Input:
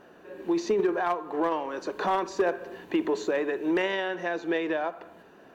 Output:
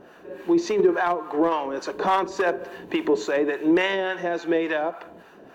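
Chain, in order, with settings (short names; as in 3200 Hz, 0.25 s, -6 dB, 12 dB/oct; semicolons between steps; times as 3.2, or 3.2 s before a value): harmonic tremolo 3.5 Hz, depth 70%, crossover 700 Hz; gain +8 dB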